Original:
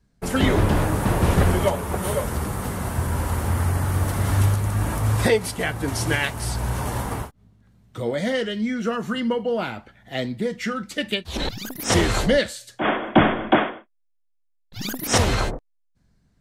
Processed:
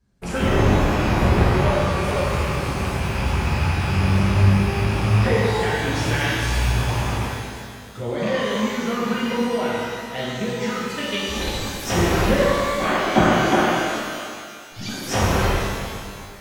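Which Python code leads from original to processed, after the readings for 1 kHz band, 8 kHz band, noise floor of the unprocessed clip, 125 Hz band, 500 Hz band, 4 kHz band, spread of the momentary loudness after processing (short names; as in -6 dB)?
+3.5 dB, -1.5 dB, -67 dBFS, +2.5 dB, +2.0 dB, +2.0 dB, 12 LU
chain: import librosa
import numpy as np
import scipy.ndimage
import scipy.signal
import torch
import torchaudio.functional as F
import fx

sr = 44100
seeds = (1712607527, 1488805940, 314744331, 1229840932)

y = fx.rattle_buzz(x, sr, strikes_db=-24.0, level_db=-19.0)
y = fx.env_lowpass_down(y, sr, base_hz=2000.0, full_db=-15.0)
y = fx.rev_shimmer(y, sr, seeds[0], rt60_s=2.0, semitones=12, shimmer_db=-8, drr_db=-6.5)
y = F.gain(torch.from_numpy(y), -5.5).numpy()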